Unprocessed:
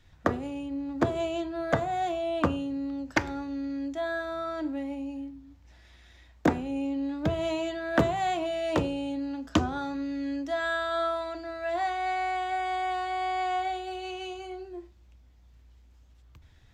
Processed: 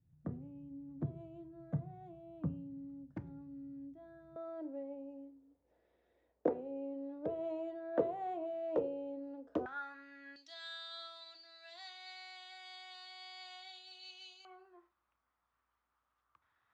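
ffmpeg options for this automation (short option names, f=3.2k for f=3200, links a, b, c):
-af "asetnsamples=n=441:p=0,asendcmd='4.36 bandpass f 480;9.66 bandpass f 1600;10.36 bandpass f 4300;14.45 bandpass f 1200',bandpass=f=150:t=q:w=4.4:csg=0"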